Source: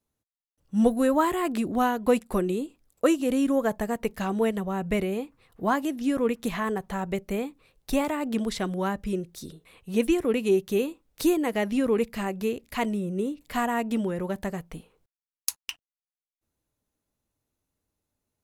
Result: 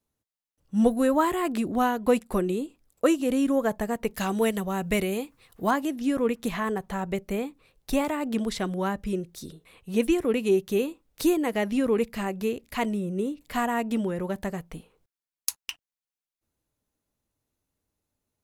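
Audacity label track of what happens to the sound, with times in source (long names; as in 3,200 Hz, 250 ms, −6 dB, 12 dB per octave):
4.150000	5.710000	high-shelf EQ 2,800 Hz +10 dB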